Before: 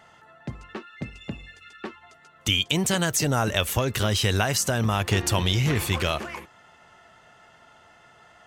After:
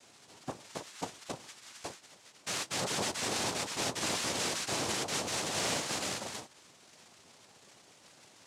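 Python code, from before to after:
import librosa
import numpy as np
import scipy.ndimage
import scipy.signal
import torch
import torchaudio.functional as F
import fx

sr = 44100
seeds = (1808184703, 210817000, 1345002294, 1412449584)

y = (np.mod(10.0 ** (22.0 / 20.0) * x + 1.0, 2.0) - 1.0) / 10.0 ** (22.0 / 20.0)
y = fx.room_early_taps(y, sr, ms=(12, 32), db=(-3.5, -16.0))
y = fx.noise_vocoder(y, sr, seeds[0], bands=2)
y = y * 10.0 ** (-7.0 / 20.0)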